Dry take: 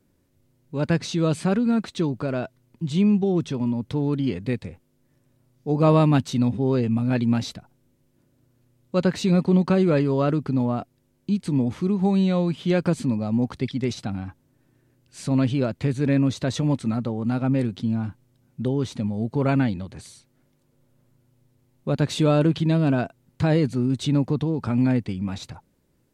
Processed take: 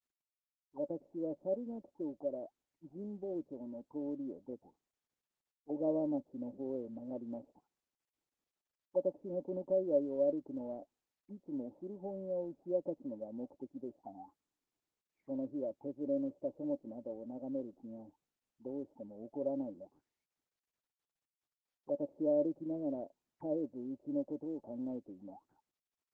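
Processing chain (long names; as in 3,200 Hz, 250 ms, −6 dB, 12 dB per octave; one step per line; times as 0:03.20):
envelope filter 570–2,700 Hz, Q 17, down, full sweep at −23 dBFS
formant resonators in series u
level +15 dB
Opus 16 kbit/s 48,000 Hz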